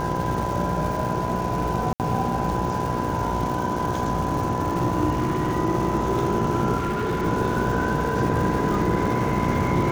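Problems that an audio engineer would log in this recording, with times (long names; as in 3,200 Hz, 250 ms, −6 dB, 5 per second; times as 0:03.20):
mains buzz 60 Hz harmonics 17 −29 dBFS
surface crackle 500 per second −31 dBFS
whistle 1,000 Hz −28 dBFS
0:01.93–0:02.00: drop-out 68 ms
0:05.12–0:05.57: clipping −18.5 dBFS
0:06.77–0:07.26: clipping −21 dBFS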